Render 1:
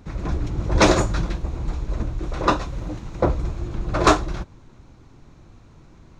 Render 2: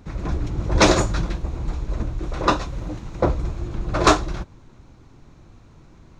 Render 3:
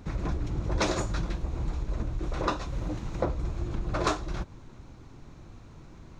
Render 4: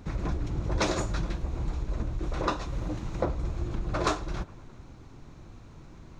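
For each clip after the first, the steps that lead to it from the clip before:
dynamic EQ 5000 Hz, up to +3 dB, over -35 dBFS, Q 0.71
compressor 3:1, threshold -28 dBFS, peak gain reduction 14 dB
analogue delay 0.105 s, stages 2048, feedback 67%, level -22 dB

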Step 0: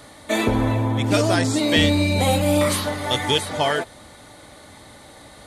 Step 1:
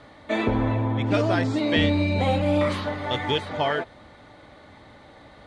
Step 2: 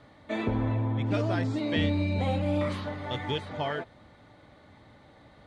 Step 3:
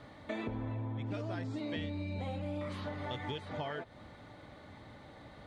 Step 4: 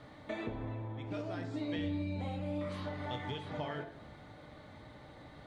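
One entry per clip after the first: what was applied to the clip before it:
LPF 3000 Hz 12 dB/oct; gain -3 dB
bell 130 Hz +5.5 dB 1.9 oct; gain -8 dB
compressor 5:1, threshold -39 dBFS, peak gain reduction 15 dB; gain +2 dB
shoebox room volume 170 m³, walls mixed, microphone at 0.48 m; gain -1.5 dB

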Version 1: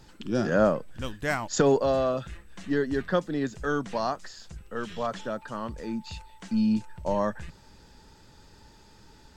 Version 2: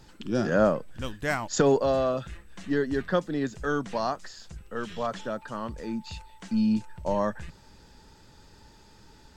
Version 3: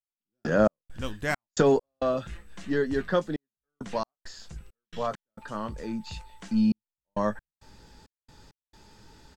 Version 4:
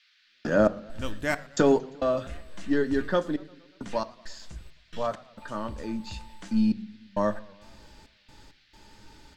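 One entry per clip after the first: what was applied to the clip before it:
nothing audible
doubler 19 ms -11.5 dB; step gate "..x.xx.x.xxxxxx" 67 bpm -60 dB
band noise 1500–4700 Hz -64 dBFS; on a send at -10.5 dB: reverb RT60 0.40 s, pre-delay 3 ms; on the sum: warbling echo 0.116 s, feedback 63%, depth 164 cents, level -23.5 dB

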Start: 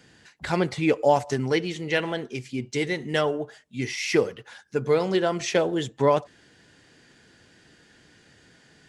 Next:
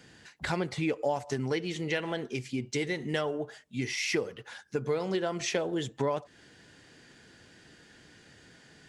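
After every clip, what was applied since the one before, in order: compressor 3:1, threshold -29 dBFS, peak gain reduction 11.5 dB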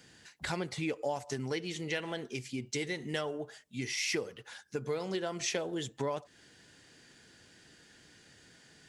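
high shelf 3800 Hz +7.5 dB; gain -5 dB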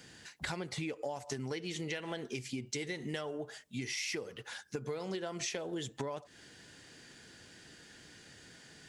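compressor 5:1, threshold -39 dBFS, peak gain reduction 9.5 dB; gain +3.5 dB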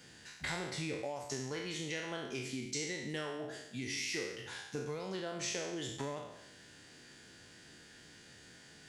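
spectral trails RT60 0.89 s; gain -3.5 dB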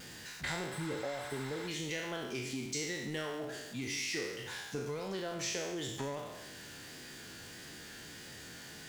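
zero-crossing step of -47 dBFS; vibrato 1.6 Hz 35 cents; spectral repair 0.72–1.66, 820–7800 Hz before

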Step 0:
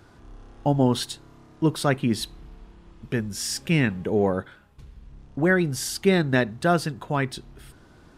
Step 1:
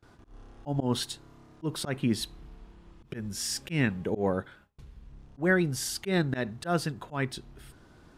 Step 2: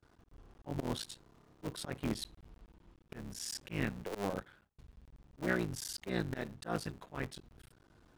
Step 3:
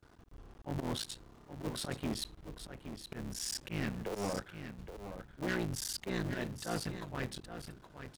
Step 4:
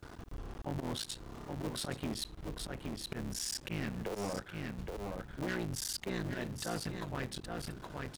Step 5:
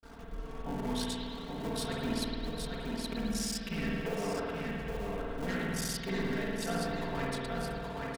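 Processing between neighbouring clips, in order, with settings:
gate with hold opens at -43 dBFS; auto swell 0.123 s; gain -3.5 dB
cycle switcher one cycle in 3, muted; gain -7.5 dB
soft clip -34 dBFS, distortion -9 dB; echo 0.82 s -9.5 dB; gain +4.5 dB
compressor 3:1, threshold -51 dBFS, peak gain reduction 14 dB; gain +11.5 dB
comb 4.4 ms, depth 84%; expander -45 dBFS; spring tank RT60 2.3 s, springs 52 ms, chirp 65 ms, DRR -3.5 dB; gain -2 dB

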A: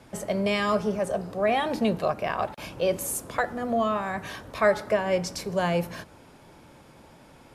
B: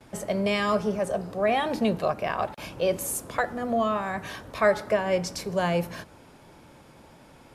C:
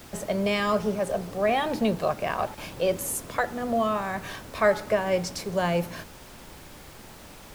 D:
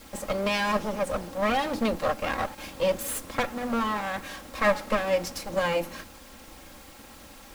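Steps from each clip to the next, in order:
gate with hold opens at -47 dBFS
added noise pink -47 dBFS
minimum comb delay 3.7 ms

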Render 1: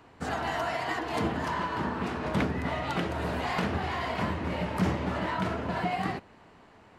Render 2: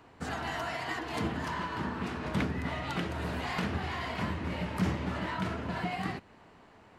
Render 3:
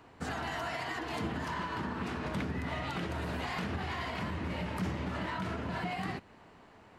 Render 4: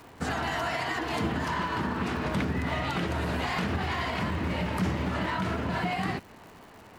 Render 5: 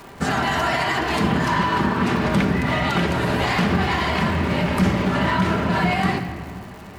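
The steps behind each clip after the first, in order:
dynamic EQ 630 Hz, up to -5 dB, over -43 dBFS, Q 0.73; gain -1.5 dB
limiter -27 dBFS, peak gain reduction 6.5 dB
crackle 300/s -51 dBFS; gain +6.5 dB
shoebox room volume 3500 m³, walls mixed, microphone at 1.2 m; gain +8 dB

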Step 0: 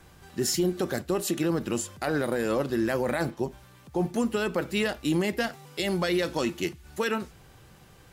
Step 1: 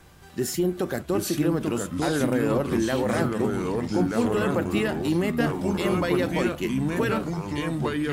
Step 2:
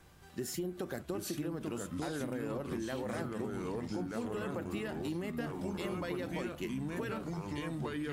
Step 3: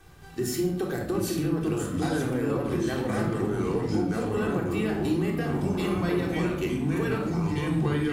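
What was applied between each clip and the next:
echoes that change speed 0.688 s, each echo -3 st, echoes 3; dynamic EQ 5100 Hz, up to -8 dB, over -47 dBFS, Q 0.89; gain +1.5 dB
compressor, threshold -26 dBFS, peak gain reduction 8.5 dB; gain -8 dB
in parallel at -7.5 dB: crossover distortion -56 dBFS; on the sum: shoebox room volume 2000 m³, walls furnished, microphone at 3.6 m; gain +2.5 dB

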